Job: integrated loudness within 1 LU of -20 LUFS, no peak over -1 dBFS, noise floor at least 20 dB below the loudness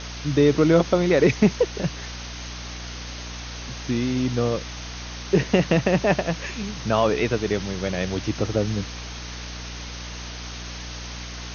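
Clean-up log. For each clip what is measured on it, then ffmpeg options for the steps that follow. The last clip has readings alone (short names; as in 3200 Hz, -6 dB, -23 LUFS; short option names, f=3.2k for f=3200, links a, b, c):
hum 60 Hz; harmonics up to 300 Hz; hum level -34 dBFS; noise floor -35 dBFS; noise floor target -44 dBFS; loudness -23.5 LUFS; peak -5.0 dBFS; loudness target -20.0 LUFS
-> -af "bandreject=f=60:t=h:w=4,bandreject=f=120:t=h:w=4,bandreject=f=180:t=h:w=4,bandreject=f=240:t=h:w=4,bandreject=f=300:t=h:w=4"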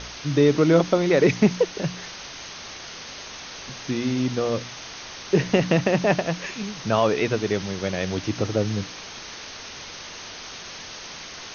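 hum none; noise floor -39 dBFS; noise floor target -43 dBFS
-> -af "afftdn=nr=6:nf=-39"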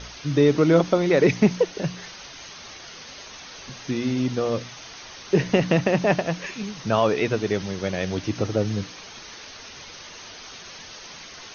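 noise floor -42 dBFS; noise floor target -43 dBFS
-> -af "afftdn=nr=6:nf=-42"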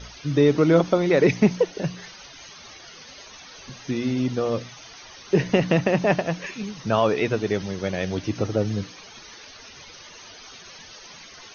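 noise floor -45 dBFS; loudness -23.0 LUFS; peak -5.5 dBFS; loudness target -20.0 LUFS
-> -af "volume=3dB"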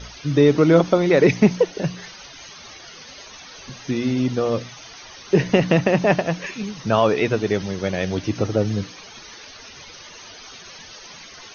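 loudness -20.0 LUFS; peak -2.5 dBFS; noise floor -42 dBFS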